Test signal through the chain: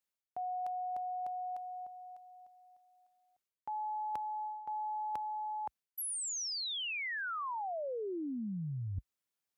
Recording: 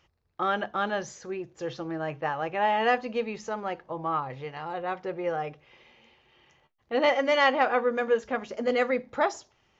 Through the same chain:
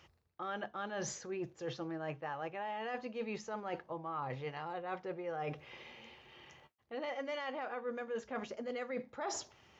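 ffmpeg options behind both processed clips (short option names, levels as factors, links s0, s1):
-af "highpass=f=55:w=0.5412,highpass=f=55:w=1.3066,alimiter=limit=0.126:level=0:latency=1:release=116,areverse,acompressor=threshold=0.00891:ratio=12,areverse,volume=1.58"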